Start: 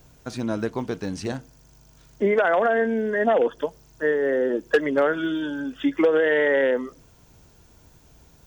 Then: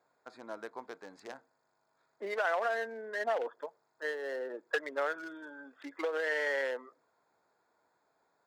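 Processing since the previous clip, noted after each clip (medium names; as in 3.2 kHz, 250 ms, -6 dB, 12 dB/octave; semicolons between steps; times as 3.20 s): local Wiener filter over 15 samples; high-pass 740 Hz 12 dB/octave; trim -7 dB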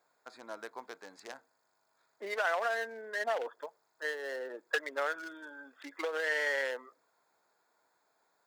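tilt EQ +2 dB/octave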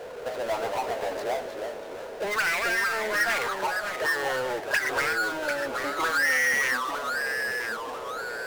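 auto-wah 480–2300 Hz, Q 6.1, up, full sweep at -29 dBFS; power-law waveshaper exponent 0.35; ever faster or slower copies 164 ms, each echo -2 st, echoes 2, each echo -6 dB; trim +7.5 dB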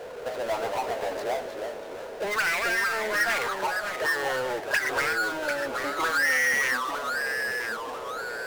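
no audible change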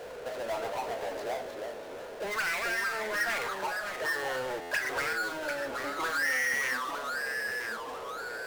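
companding laws mixed up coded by mu; reverberation RT60 0.35 s, pre-delay 25 ms, DRR 11 dB; buffer glitch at 4.61 s, samples 512, times 8; trim -6.5 dB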